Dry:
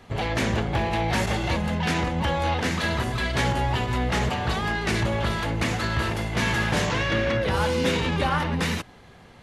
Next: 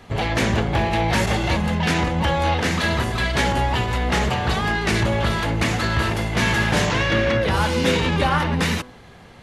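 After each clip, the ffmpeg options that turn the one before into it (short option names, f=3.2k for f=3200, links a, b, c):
-af "bandreject=f=124.7:t=h:w=4,bandreject=f=249.4:t=h:w=4,bandreject=f=374.1:t=h:w=4,bandreject=f=498.8:t=h:w=4,bandreject=f=623.5:t=h:w=4,bandreject=f=748.2:t=h:w=4,bandreject=f=872.9:t=h:w=4,bandreject=f=997.6:t=h:w=4,bandreject=f=1.1223k:t=h:w=4,bandreject=f=1.247k:t=h:w=4,bandreject=f=1.3717k:t=h:w=4,bandreject=f=1.4964k:t=h:w=4,volume=4.5dB"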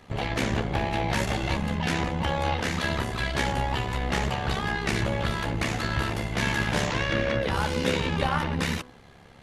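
-af "tremolo=f=69:d=0.667,volume=-3.5dB"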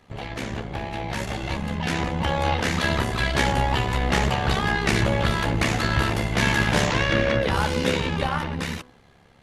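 -af "dynaudnorm=f=360:g=11:m=12dB,volume=-4.5dB"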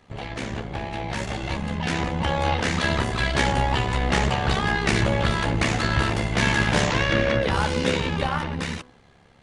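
-af "aresample=22050,aresample=44100"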